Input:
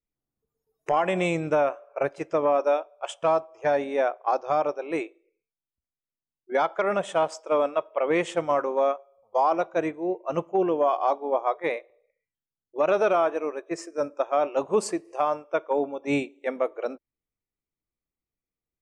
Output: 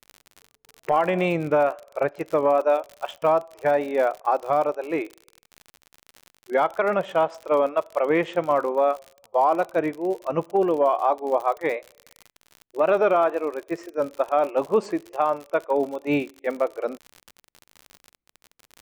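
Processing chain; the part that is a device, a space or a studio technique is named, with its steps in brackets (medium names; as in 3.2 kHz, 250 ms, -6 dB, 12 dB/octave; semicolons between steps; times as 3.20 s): lo-fi chain (low-pass 3.1 kHz 12 dB/octave; wow and flutter; crackle 56 per s -33 dBFS); trim +2.5 dB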